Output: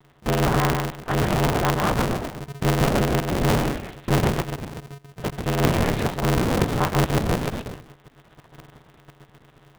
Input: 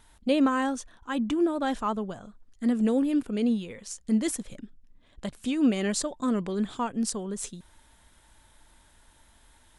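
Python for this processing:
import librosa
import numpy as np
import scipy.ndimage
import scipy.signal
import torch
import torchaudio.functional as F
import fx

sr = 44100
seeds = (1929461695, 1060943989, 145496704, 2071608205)

y = fx.cycle_switch(x, sr, every=3, mode='inverted')
y = fx.lowpass(y, sr, hz=2300.0, slope=6)
y = fx.low_shelf(y, sr, hz=130.0, db=3.0)
y = fx.leveller(y, sr, passes=2)
y = fx.rider(y, sr, range_db=4, speed_s=0.5)
y = fx.comb_fb(y, sr, f0_hz=880.0, decay_s=0.15, harmonics='all', damping=0.0, mix_pct=60)
y = fx.echo_feedback(y, sr, ms=138, feedback_pct=18, wet_db=-4)
y = fx.lpc_monotone(y, sr, seeds[0], pitch_hz=180.0, order=8)
y = y * np.sign(np.sin(2.0 * np.pi * 140.0 * np.arange(len(y)) / sr))
y = F.gain(torch.from_numpy(y), 6.5).numpy()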